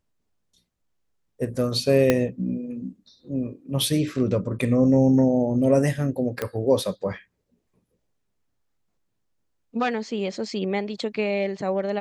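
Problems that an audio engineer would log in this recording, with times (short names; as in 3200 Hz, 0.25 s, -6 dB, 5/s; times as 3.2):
2.1 pop -5 dBFS
6.42 pop -12 dBFS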